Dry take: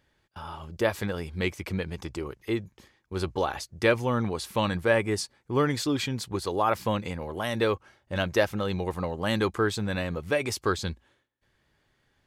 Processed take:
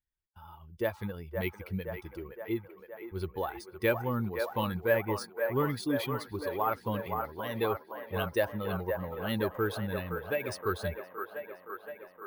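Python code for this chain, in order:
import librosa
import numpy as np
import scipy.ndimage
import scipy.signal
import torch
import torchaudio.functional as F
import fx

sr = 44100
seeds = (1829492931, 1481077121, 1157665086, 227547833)

p1 = fx.bin_expand(x, sr, power=1.5)
p2 = 10.0 ** (-21.0 / 20.0) * np.tanh(p1 / 10.0 ** (-21.0 / 20.0))
p3 = p1 + F.gain(torch.from_numpy(p2), -11.0).numpy()
p4 = fx.air_absorb(p3, sr, metres=85.0)
p5 = fx.echo_wet_bandpass(p4, sr, ms=518, feedback_pct=68, hz=920.0, wet_db=-4)
p6 = np.repeat(scipy.signal.resample_poly(p5, 1, 3), 3)[:len(p5)]
y = F.gain(torch.from_numpy(p6), -4.5).numpy()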